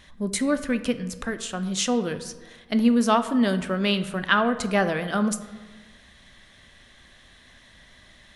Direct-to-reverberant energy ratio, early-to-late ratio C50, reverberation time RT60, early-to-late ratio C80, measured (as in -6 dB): 10.0 dB, 12.5 dB, 1.3 s, 14.0 dB